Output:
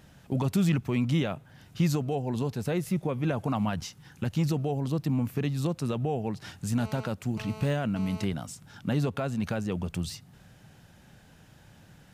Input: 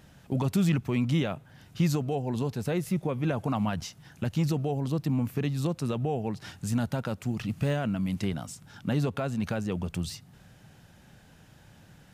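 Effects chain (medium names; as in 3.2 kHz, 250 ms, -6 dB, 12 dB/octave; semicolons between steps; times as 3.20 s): 3.79–4.26 s: Butterworth band-stop 650 Hz, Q 4.9; 6.79–8.24 s: mobile phone buzz -44 dBFS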